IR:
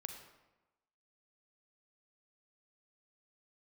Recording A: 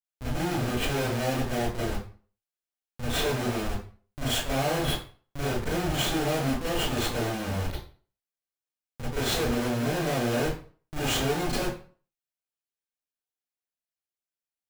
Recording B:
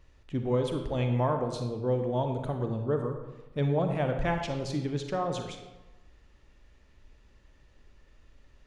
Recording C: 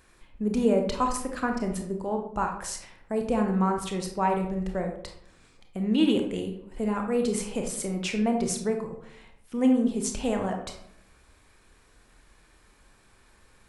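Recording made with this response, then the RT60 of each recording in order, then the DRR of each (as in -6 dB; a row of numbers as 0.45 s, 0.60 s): B; 0.40 s, 1.1 s, 0.70 s; -10.5 dB, 5.0 dB, 3.0 dB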